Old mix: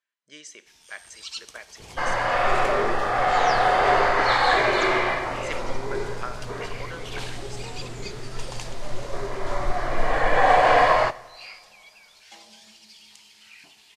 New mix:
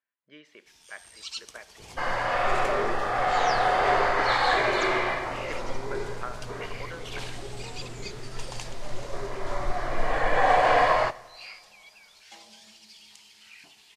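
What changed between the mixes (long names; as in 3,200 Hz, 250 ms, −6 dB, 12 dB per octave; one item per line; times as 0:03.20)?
speech: add high-frequency loss of the air 440 metres
first sound: send −11.5 dB
second sound −3.5 dB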